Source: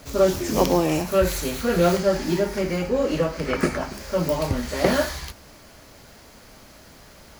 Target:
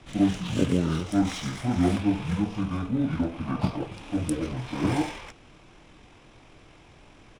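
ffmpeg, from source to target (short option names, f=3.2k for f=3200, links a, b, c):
-filter_complex "[0:a]acrossover=split=150|880|5400[a][b][c][d];[a]acompressor=threshold=-42dB:ratio=6[e];[e][b][c][d]amix=inputs=4:normalize=0,asetrate=22696,aresample=44100,atempo=1.94306,adynamicsmooth=sensitivity=8:basefreq=6k,volume=-3.5dB"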